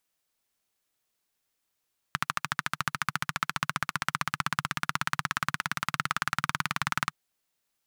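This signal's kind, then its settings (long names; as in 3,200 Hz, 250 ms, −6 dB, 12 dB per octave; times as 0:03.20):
pulse-train model of a single-cylinder engine, changing speed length 4.97 s, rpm 1,600, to 2,300, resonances 150/1,300 Hz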